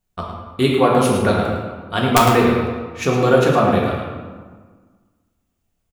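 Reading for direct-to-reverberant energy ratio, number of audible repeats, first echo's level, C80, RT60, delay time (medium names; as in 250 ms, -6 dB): -3.0 dB, 1, -8.0 dB, 2.0 dB, 1.5 s, 108 ms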